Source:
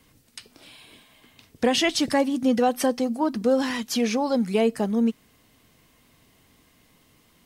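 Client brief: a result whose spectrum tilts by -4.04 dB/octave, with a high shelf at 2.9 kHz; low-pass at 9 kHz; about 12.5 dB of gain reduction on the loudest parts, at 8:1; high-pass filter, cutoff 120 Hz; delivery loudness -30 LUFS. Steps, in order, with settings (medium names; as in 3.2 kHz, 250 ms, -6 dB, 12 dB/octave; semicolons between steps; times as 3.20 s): high-pass 120 Hz; low-pass 9 kHz; treble shelf 2.9 kHz -3.5 dB; compression 8:1, threshold -30 dBFS; trim +4 dB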